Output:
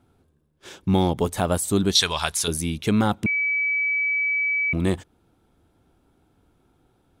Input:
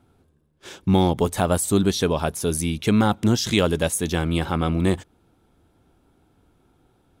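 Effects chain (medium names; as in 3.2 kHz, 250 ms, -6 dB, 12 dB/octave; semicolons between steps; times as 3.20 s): 1.95–2.48 s: graphic EQ 125/250/500/1000/2000/4000/8000 Hz -5/-12/-7/+4/+7/+11/+9 dB; 3.26–4.73 s: bleep 2.29 kHz -18 dBFS; trim -2 dB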